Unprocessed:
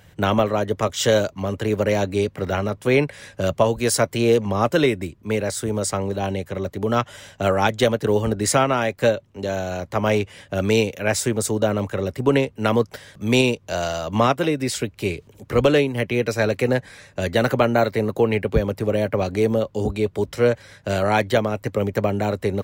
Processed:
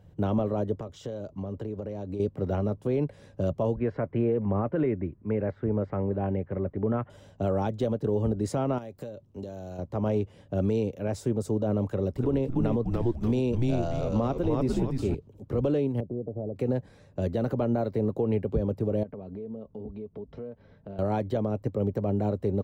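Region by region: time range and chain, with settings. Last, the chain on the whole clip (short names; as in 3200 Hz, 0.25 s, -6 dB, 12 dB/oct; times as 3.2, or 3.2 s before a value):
0.77–2.2 high shelf 9900 Hz -7 dB + compressor 10:1, threshold -26 dBFS
3.75–7.1 Chebyshev low-pass 2200 Hz, order 3 + bell 1800 Hz +7.5 dB 1.4 oct
8.78–9.79 high shelf 4600 Hz +11 dB + compressor 10:1, threshold -29 dBFS
11.86–15.15 frequency-shifting echo 0.294 s, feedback 39%, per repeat -120 Hz, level -4 dB + mismatched tape noise reduction encoder only
16–16.56 CVSD 64 kbps + Chebyshev low-pass 710 Hz, order 4 + compressor 3:1, threshold -27 dBFS
19.03–20.99 air absorption 280 m + comb 4.5 ms, depth 42% + compressor 5:1, threshold -33 dBFS
whole clip: EQ curve 300 Hz 0 dB, 2800 Hz -8 dB, 9300 Hz -20 dB; limiter -14.5 dBFS; bell 2000 Hz -13 dB 1.6 oct; gain -2 dB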